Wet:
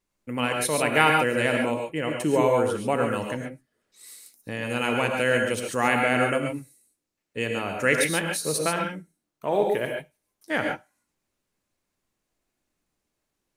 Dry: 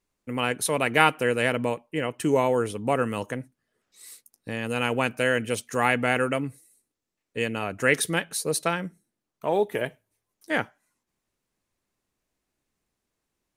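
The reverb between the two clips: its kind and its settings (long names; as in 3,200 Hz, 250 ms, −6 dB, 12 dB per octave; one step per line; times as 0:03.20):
reverb whose tail is shaped and stops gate 160 ms rising, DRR 2 dB
level −1 dB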